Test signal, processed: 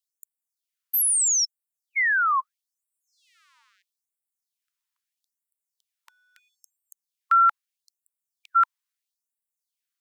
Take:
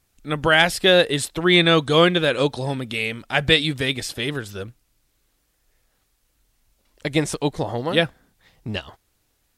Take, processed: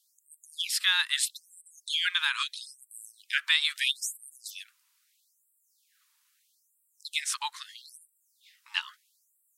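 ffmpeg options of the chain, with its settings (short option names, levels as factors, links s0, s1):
-filter_complex "[0:a]acrossover=split=250|1200|2800[s0][s1][s2][s3];[s0]aeval=exprs='sgn(val(0))*max(abs(val(0))-0.00299,0)':c=same[s4];[s4][s1][s2][s3]amix=inputs=4:normalize=0,alimiter=limit=0.282:level=0:latency=1:release=177,afftfilt=real='re*gte(b*sr/1024,830*pow(7600/830,0.5+0.5*sin(2*PI*0.77*pts/sr)))':imag='im*gte(b*sr/1024,830*pow(7600/830,0.5+0.5*sin(2*PI*0.77*pts/sr)))':win_size=1024:overlap=0.75,volume=1.12"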